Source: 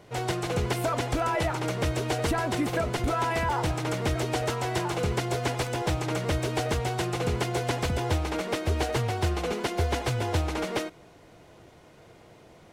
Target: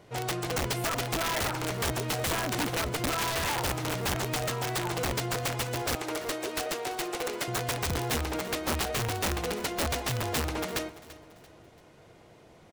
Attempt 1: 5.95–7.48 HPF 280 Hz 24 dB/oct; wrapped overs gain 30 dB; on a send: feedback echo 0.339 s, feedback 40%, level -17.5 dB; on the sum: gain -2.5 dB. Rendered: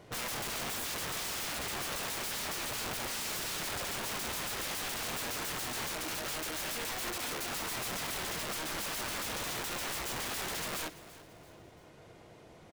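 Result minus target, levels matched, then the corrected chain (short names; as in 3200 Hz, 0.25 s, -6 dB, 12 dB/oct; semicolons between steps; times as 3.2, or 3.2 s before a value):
wrapped overs: distortion +32 dB
5.95–7.48 HPF 280 Hz 24 dB/oct; wrapped overs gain 21 dB; on a send: feedback echo 0.339 s, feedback 40%, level -17.5 dB; on the sum: gain -2.5 dB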